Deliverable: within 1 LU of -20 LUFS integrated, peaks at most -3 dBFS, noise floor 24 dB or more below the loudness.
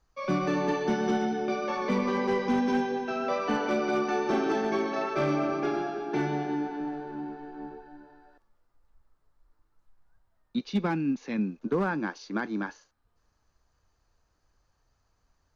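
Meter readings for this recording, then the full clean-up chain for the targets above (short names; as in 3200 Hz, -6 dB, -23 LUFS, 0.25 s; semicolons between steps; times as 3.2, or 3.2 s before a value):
clipped 0.4%; flat tops at -19.5 dBFS; loudness -29.5 LUFS; peak -19.5 dBFS; loudness target -20.0 LUFS
-> clip repair -19.5 dBFS; gain +9.5 dB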